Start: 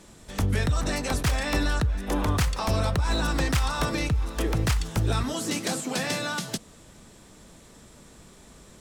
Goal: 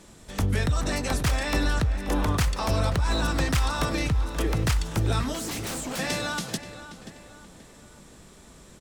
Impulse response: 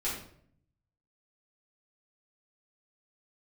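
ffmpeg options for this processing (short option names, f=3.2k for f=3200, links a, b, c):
-filter_complex "[0:a]asplit=2[a][b];[b]adelay=531,lowpass=f=3.7k:p=1,volume=-12.5dB,asplit=2[c][d];[d]adelay=531,lowpass=f=3.7k:p=1,volume=0.43,asplit=2[e][f];[f]adelay=531,lowpass=f=3.7k:p=1,volume=0.43,asplit=2[g][h];[h]adelay=531,lowpass=f=3.7k:p=1,volume=0.43[i];[a][c][e][g][i]amix=inputs=5:normalize=0,asettb=1/sr,asplit=3[j][k][l];[j]atrim=end=5.334[m];[k]atrim=start=5.33:end=5.99,asetpts=PTS-STARTPTS,afade=t=in:d=0.004:c=qsin,afade=t=out:st=0.656:d=0.004:c=qsin,aeval=exprs='0.0447*(abs(mod(val(0)/0.0447+3,4)-2)-1)':c=same[n];[l]atrim=start=5.986[o];[m][n]acrossfade=d=0.004:c1=hsin:c2=qsin[p];[p][o]acrossfade=d=0.004:c1=qsin:c2=hsin"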